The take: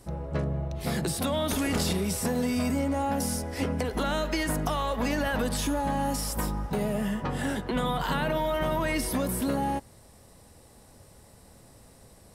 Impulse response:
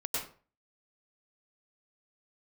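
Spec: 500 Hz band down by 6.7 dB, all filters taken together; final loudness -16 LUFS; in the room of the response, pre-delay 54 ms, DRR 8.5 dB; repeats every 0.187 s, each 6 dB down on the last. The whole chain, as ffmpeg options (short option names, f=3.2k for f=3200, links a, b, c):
-filter_complex "[0:a]equalizer=f=500:t=o:g=-8.5,aecho=1:1:187|374|561|748|935|1122:0.501|0.251|0.125|0.0626|0.0313|0.0157,asplit=2[a][b];[1:a]atrim=start_sample=2205,adelay=54[c];[b][c]afir=irnorm=-1:irlink=0,volume=-13dB[d];[a][d]amix=inputs=2:normalize=0,volume=13dB"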